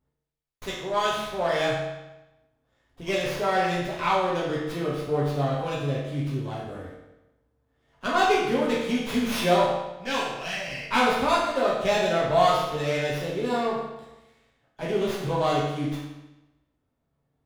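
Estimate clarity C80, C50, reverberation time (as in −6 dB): 4.0 dB, 1.0 dB, 1.0 s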